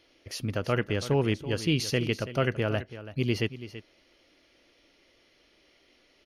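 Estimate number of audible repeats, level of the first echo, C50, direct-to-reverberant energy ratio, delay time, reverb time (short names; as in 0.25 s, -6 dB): 1, -14.0 dB, none, none, 0.331 s, none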